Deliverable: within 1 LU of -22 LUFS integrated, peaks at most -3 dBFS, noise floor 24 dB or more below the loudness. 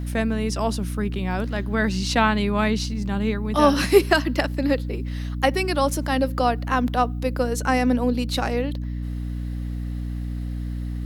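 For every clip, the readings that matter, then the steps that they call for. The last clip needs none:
hum 60 Hz; highest harmonic 300 Hz; hum level -26 dBFS; loudness -23.5 LUFS; peak level -2.5 dBFS; loudness target -22.0 LUFS
-> hum notches 60/120/180/240/300 Hz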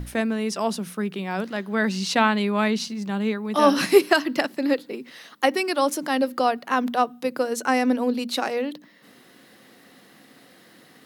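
hum not found; loudness -23.5 LUFS; peak level -2.5 dBFS; loudness target -22.0 LUFS
-> trim +1.5 dB; peak limiter -3 dBFS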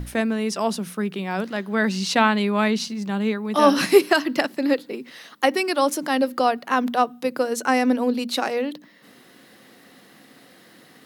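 loudness -22.0 LUFS; peak level -3.0 dBFS; noise floor -51 dBFS

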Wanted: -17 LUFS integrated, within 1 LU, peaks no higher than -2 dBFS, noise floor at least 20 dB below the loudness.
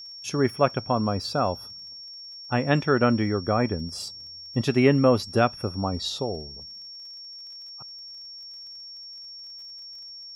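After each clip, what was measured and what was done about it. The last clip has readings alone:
tick rate 43 per s; steady tone 5.5 kHz; tone level -39 dBFS; loudness -24.5 LUFS; peak level -6.0 dBFS; loudness target -17.0 LUFS
-> de-click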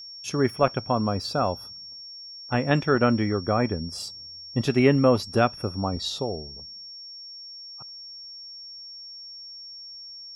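tick rate 0 per s; steady tone 5.5 kHz; tone level -39 dBFS
-> band-stop 5.5 kHz, Q 30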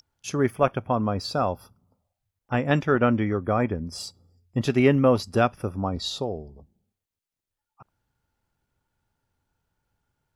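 steady tone not found; loudness -24.5 LUFS; peak level -6.0 dBFS; loudness target -17.0 LUFS
-> trim +7.5 dB; peak limiter -2 dBFS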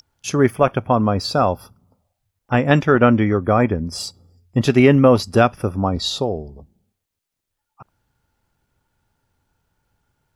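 loudness -17.5 LUFS; peak level -2.0 dBFS; noise floor -80 dBFS

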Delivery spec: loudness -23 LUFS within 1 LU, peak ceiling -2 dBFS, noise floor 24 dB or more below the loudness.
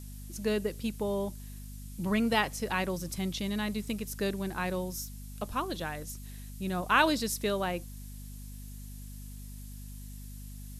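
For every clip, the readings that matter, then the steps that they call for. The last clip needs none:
hum 50 Hz; highest harmonic 250 Hz; hum level -42 dBFS; noise floor -44 dBFS; noise floor target -56 dBFS; loudness -32.0 LUFS; peak level -10.0 dBFS; loudness target -23.0 LUFS
-> de-hum 50 Hz, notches 5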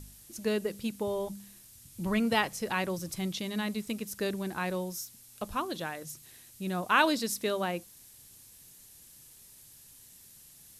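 hum not found; noise floor -55 dBFS; noise floor target -56 dBFS
-> noise print and reduce 6 dB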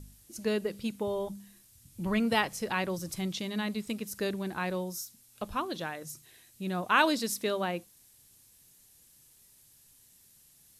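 noise floor -61 dBFS; loudness -32.0 LUFS; peak level -10.0 dBFS; loudness target -23.0 LUFS
-> trim +9 dB; peak limiter -2 dBFS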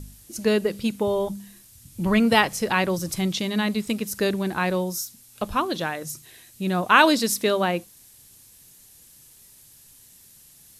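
loudness -23.0 LUFS; peak level -2.0 dBFS; noise floor -52 dBFS

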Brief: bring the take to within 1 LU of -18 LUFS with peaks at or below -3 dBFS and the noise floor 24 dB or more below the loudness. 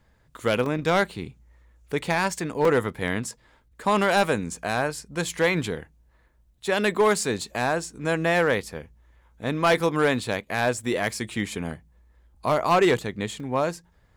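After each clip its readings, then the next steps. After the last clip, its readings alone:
clipped samples 0.5%; clipping level -13.5 dBFS; dropouts 4; longest dropout 3.1 ms; loudness -25.0 LUFS; peak level -13.5 dBFS; loudness target -18.0 LUFS
-> clip repair -13.5 dBFS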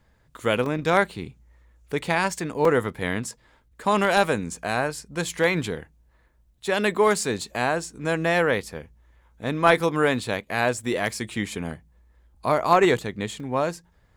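clipped samples 0.0%; dropouts 4; longest dropout 3.1 ms
-> interpolate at 0.66/2.65/9.80/13.40 s, 3.1 ms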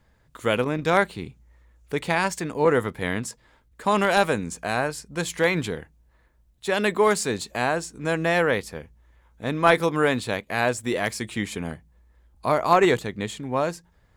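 dropouts 0; loudness -24.0 LUFS; peak level -4.5 dBFS; loudness target -18.0 LUFS
-> trim +6 dB; peak limiter -3 dBFS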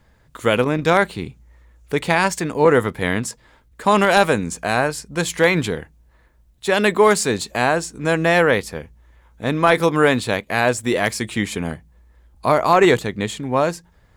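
loudness -18.5 LUFS; peak level -3.0 dBFS; noise floor -55 dBFS

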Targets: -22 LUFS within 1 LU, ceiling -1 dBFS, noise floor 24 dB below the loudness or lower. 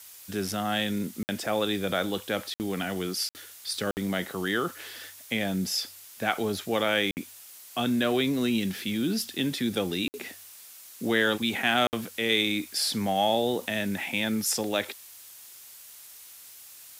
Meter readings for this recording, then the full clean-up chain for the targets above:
dropouts 7; longest dropout 59 ms; noise floor -48 dBFS; noise floor target -52 dBFS; loudness -28.0 LUFS; peak level -9.5 dBFS; loudness target -22.0 LUFS
-> interpolate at 1.23/2.54/3.29/3.91/7.11/10.08/11.87 s, 59 ms; noise reduction 6 dB, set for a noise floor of -48 dBFS; trim +6 dB

